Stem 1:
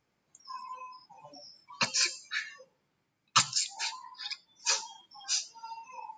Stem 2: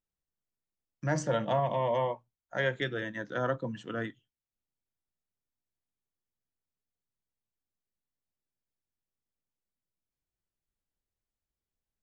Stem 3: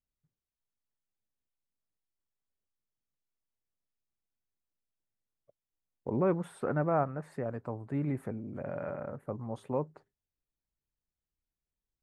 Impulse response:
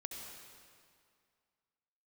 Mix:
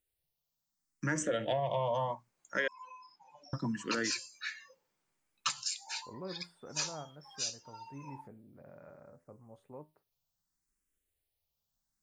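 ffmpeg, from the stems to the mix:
-filter_complex "[0:a]lowshelf=f=270:g=-10.5,adelay=2100,volume=-5.5dB[a];[1:a]highshelf=f=3.9k:g=8.5,acontrast=77,asplit=2[b][c];[c]afreqshift=0.72[d];[b][d]amix=inputs=2:normalize=1,volume=-2dB,asplit=3[e][f][g];[e]atrim=end=2.68,asetpts=PTS-STARTPTS,afade=t=out:st=2.676:d=0.004:c=hsin[h];[f]atrim=start=2.68:end=3.53,asetpts=PTS-STARTPTS,volume=0[i];[g]atrim=start=3.53,asetpts=PTS-STARTPTS,afade=t=in:d=0.004:c=hsin[j];[h][i][j]concat=n=3:v=0:a=1[k];[2:a]flanger=delay=9:depth=5.6:regen=75:speed=0.19:shape=sinusoidal,volume=-12dB[l];[a][k][l]amix=inputs=3:normalize=0,acompressor=threshold=-29dB:ratio=6"

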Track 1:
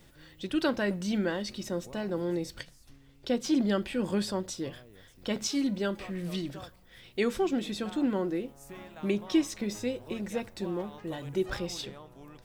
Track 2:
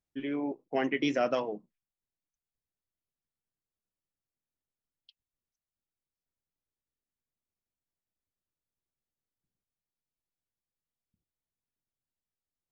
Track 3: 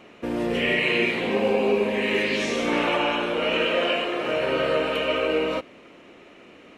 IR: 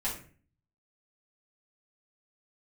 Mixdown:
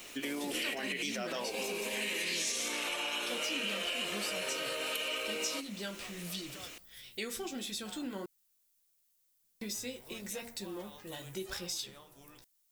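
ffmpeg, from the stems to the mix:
-filter_complex "[0:a]bandreject=f=77.41:t=h:w=4,bandreject=f=154.82:t=h:w=4,bandreject=f=232.23:t=h:w=4,bandreject=f=309.64:t=h:w=4,bandreject=f=387.05:t=h:w=4,bandreject=f=464.46:t=h:w=4,bandreject=f=541.87:t=h:w=4,bandreject=f=619.28:t=h:w=4,bandreject=f=696.69:t=h:w=4,bandreject=f=774.1:t=h:w=4,bandreject=f=851.51:t=h:w=4,bandreject=f=928.92:t=h:w=4,bandreject=f=1.00633k:t=h:w=4,bandreject=f=1.08374k:t=h:w=4,bandreject=f=1.16115k:t=h:w=4,bandreject=f=1.23856k:t=h:w=4,bandreject=f=1.31597k:t=h:w=4,bandreject=f=1.39338k:t=h:w=4,bandreject=f=1.47079k:t=h:w=4,bandreject=f=1.5482k:t=h:w=4,bandreject=f=1.62561k:t=h:w=4,bandreject=f=1.70302k:t=h:w=4,bandreject=f=1.78043k:t=h:w=4,bandreject=f=1.85784k:t=h:w=4,bandreject=f=1.93525k:t=h:w=4,bandreject=f=2.01266k:t=h:w=4,bandreject=f=2.09007k:t=h:w=4,bandreject=f=2.16748k:t=h:w=4,bandreject=f=2.24489k:t=h:w=4,bandreject=f=2.3223k:t=h:w=4,flanger=delay=8.9:depth=7.5:regen=-37:speed=0.93:shape=sinusoidal,volume=-5.5dB,asplit=3[a][b][c];[a]atrim=end=8.26,asetpts=PTS-STARTPTS,afade=t=out:st=8.256:d=0.004:c=hsin[d];[b]atrim=start=8.26:end=9.61,asetpts=PTS-STARTPTS,volume=0[e];[c]atrim=start=9.61,asetpts=PTS-STARTPTS,afade=t=in:d=0.004:c=hsin[f];[d][e][f]concat=n=3:v=0:a=1[g];[1:a]equalizer=f=86:w=0.44:g=-5.5,volume=2dB,asplit=2[h][i];[2:a]highpass=170,bass=f=250:g=-3,treble=f=4k:g=11,volume=-8.5dB[j];[i]apad=whole_len=298982[k];[j][k]sidechaincompress=threshold=-36dB:ratio=8:attack=16:release=135[l];[h][l]amix=inputs=2:normalize=0,alimiter=level_in=1.5dB:limit=-24dB:level=0:latency=1,volume=-1.5dB,volume=0dB[m];[g][m]amix=inputs=2:normalize=0,crystalizer=i=7:c=0,acompressor=threshold=-37dB:ratio=2.5"

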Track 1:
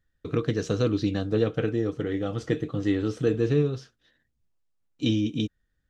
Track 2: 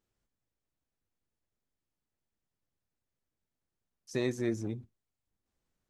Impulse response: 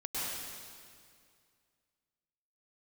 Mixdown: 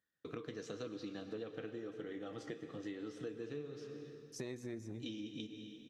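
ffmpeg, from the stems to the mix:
-filter_complex "[0:a]lowshelf=f=350:g=-5,flanger=delay=3.6:depth=8.1:regen=-73:speed=0.98:shape=triangular,highpass=170,volume=-3.5dB,asplit=2[a][b];[b]volume=-13dB[c];[1:a]adelay=250,volume=-2dB,asplit=2[d][e];[e]volume=-20dB[f];[2:a]atrim=start_sample=2205[g];[c][f]amix=inputs=2:normalize=0[h];[h][g]afir=irnorm=-1:irlink=0[i];[a][d][i]amix=inputs=3:normalize=0,acompressor=threshold=-43dB:ratio=4"

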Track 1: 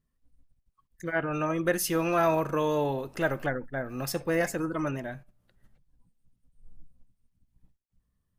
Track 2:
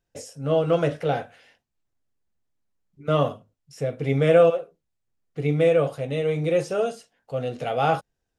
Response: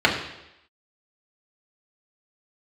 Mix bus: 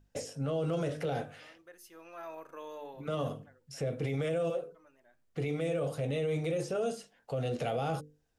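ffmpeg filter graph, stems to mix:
-filter_complex "[0:a]highpass=360,aeval=exprs='val(0)+0.00631*(sin(2*PI*50*n/s)+sin(2*PI*2*50*n/s)/2+sin(2*PI*3*50*n/s)/3+sin(2*PI*4*50*n/s)/4+sin(2*PI*5*50*n/s)/5)':c=same,volume=-15dB[a];[1:a]acrossover=split=450|4800[b][c][d];[b]acompressor=threshold=-30dB:ratio=4[e];[c]acompressor=threshold=-36dB:ratio=4[f];[d]acompressor=threshold=-51dB:ratio=4[g];[e][f][g]amix=inputs=3:normalize=0,volume=2dB,asplit=2[h][i];[i]apad=whole_len=369584[j];[a][j]sidechaincompress=threshold=-40dB:ratio=16:attack=5.9:release=1240[k];[k][h]amix=inputs=2:normalize=0,bandreject=f=50:t=h:w=6,bandreject=f=100:t=h:w=6,bandreject=f=150:t=h:w=6,bandreject=f=200:t=h:w=6,bandreject=f=250:t=h:w=6,bandreject=f=300:t=h:w=6,bandreject=f=350:t=h:w=6,bandreject=f=400:t=h:w=6,bandreject=f=450:t=h:w=6,bandreject=f=500:t=h:w=6,alimiter=level_in=1dB:limit=-24dB:level=0:latency=1:release=23,volume=-1dB"

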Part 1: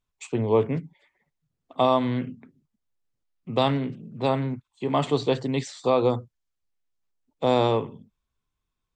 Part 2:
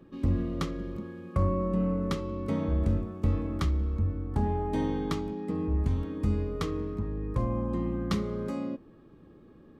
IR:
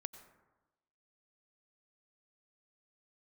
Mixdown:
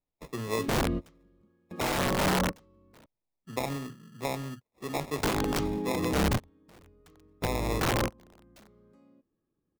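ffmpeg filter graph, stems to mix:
-filter_complex "[0:a]highshelf=f=2.3k:g=8,acrusher=samples=29:mix=1:aa=0.000001,volume=-10dB,asplit=2[a][b];[1:a]aeval=exprs='(mod(14.1*val(0)+1,2)-1)/14.1':c=same,adelay=450,volume=3dB,asplit=3[c][d][e];[c]atrim=end=3.06,asetpts=PTS-STARTPTS,afade=t=out:st=3.056:d=0.004:c=hsin[f];[d]atrim=start=3.06:end=5.23,asetpts=PTS-STARTPTS,volume=0[g];[e]atrim=start=5.23,asetpts=PTS-STARTPTS,afade=t=in:d=0.004:c=hsin[h];[f][g][h]concat=n=3:v=0:a=1[i];[b]apad=whole_len=451602[j];[i][j]sidechaingate=range=-30dB:threshold=-59dB:ratio=16:detection=peak[k];[a][k]amix=inputs=2:normalize=0,alimiter=limit=-20dB:level=0:latency=1:release=80"

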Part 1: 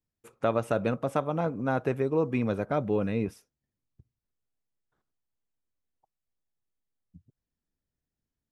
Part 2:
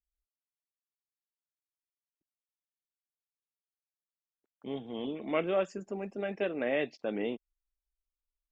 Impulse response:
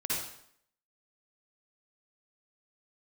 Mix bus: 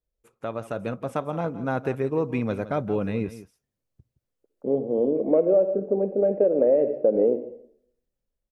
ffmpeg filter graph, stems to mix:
-filter_complex "[0:a]dynaudnorm=f=380:g=5:m=8dB,volume=-6.5dB,asplit=2[a][b];[b]volume=-15dB[c];[1:a]acontrast=82,lowpass=f=520:t=q:w=4.7,volume=0dB,asplit=2[d][e];[e]volume=-16dB[f];[2:a]atrim=start_sample=2205[g];[f][g]afir=irnorm=-1:irlink=0[h];[c]aecho=0:1:168:1[i];[a][d][h][i]amix=inputs=4:normalize=0,acompressor=threshold=-16dB:ratio=6"

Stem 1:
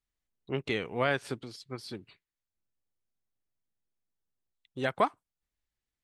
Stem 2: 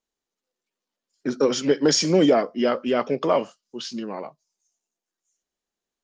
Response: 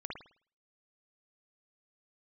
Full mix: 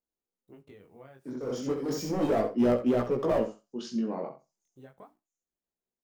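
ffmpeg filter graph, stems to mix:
-filter_complex "[0:a]bandreject=f=60:t=h:w=6,bandreject=f=120:t=h:w=6,bandreject=f=180:t=h:w=6,bandreject=f=240:t=h:w=6,bandreject=f=300:t=h:w=6,acompressor=threshold=-35dB:ratio=2.5,acrusher=bits=9:mix=0:aa=0.000001,volume=-9dB,asplit=3[a][b][c];[b]volume=-21dB[d];[1:a]dynaudnorm=f=230:g=11:m=6.5dB,asoftclip=type=hard:threshold=-15.5dB,volume=-1.5dB,asplit=2[e][f];[f]volume=-10.5dB[g];[c]apad=whole_len=266220[h];[e][h]sidechaincompress=threshold=-53dB:ratio=8:attack=12:release=535[i];[d][g]amix=inputs=2:normalize=0,aecho=0:1:66|132|198:1|0.16|0.0256[j];[a][i][j]amix=inputs=3:normalize=0,equalizer=f=3.3k:w=0.37:g=-13,flanger=delay=16:depth=7.7:speed=0.34"

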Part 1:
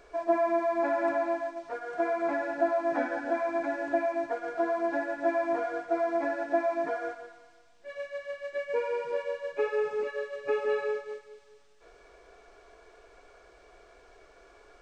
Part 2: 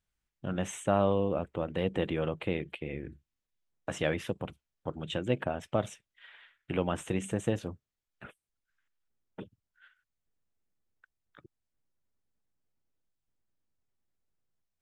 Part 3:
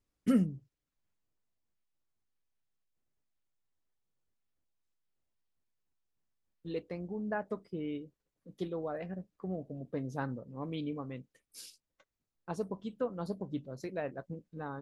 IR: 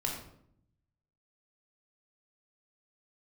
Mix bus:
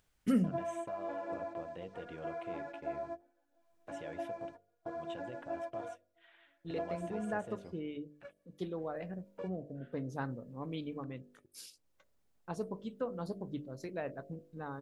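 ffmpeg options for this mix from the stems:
-filter_complex "[0:a]adynamicequalizer=threshold=0.00398:dfrequency=1900:dqfactor=1.6:tfrequency=1900:tqfactor=1.6:attack=5:release=100:ratio=0.375:range=3:mode=cutabove:tftype=bell,adelay=250,volume=-12.5dB[a];[1:a]equalizer=f=600:t=o:w=1.3:g=5,acompressor=mode=upward:threshold=-41dB:ratio=2.5,alimiter=limit=-20dB:level=0:latency=1:release=133,volume=-15.5dB,asplit=2[b][c];[2:a]volume=-1.5dB[d];[c]apad=whole_len=664498[e];[a][e]sidechaingate=range=-33dB:threshold=-59dB:ratio=16:detection=peak[f];[f][b][d]amix=inputs=3:normalize=0,bandreject=f=49.42:t=h:w=4,bandreject=f=98.84:t=h:w=4,bandreject=f=148.26:t=h:w=4,bandreject=f=197.68:t=h:w=4,bandreject=f=247.1:t=h:w=4,bandreject=f=296.52:t=h:w=4,bandreject=f=345.94:t=h:w=4,bandreject=f=395.36:t=h:w=4,bandreject=f=444.78:t=h:w=4,bandreject=f=494.2:t=h:w=4,bandreject=f=543.62:t=h:w=4,bandreject=f=593.04:t=h:w=4,bandreject=f=642.46:t=h:w=4,bandreject=f=691.88:t=h:w=4"

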